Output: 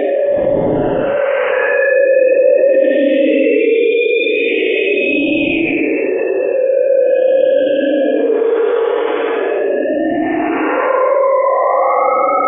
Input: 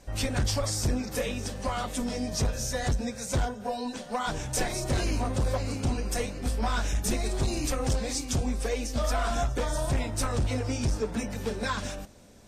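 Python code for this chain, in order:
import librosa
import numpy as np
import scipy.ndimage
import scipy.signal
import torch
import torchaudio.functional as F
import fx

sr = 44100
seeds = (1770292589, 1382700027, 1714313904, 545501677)

y = fx.sine_speech(x, sr)
y = y + 0.6 * np.pad(y, (int(7.1 * sr / 1000.0), 0))[:len(y)]
y = fx.echo_bbd(y, sr, ms=250, stages=1024, feedback_pct=37, wet_db=-4)
y = fx.paulstretch(y, sr, seeds[0], factor=19.0, window_s=0.05, from_s=1.08)
y = fx.env_flatten(y, sr, amount_pct=70)
y = y * 10.0 ** (4.0 / 20.0)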